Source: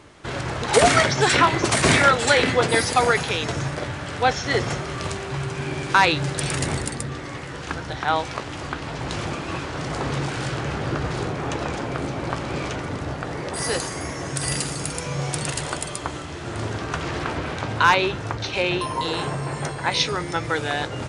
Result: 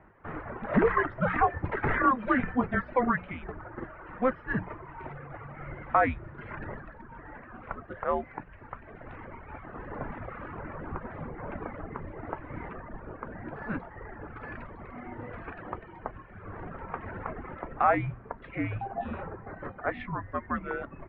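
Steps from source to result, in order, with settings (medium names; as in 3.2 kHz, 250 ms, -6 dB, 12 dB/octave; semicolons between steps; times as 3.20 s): reverb removal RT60 1.5 s; 8.43–9.65 s: peaking EQ 780 Hz -4.5 dB 2.9 oct; mistuned SSB -250 Hz 210–2200 Hz; hum notches 60/120/180 Hz; trim -6 dB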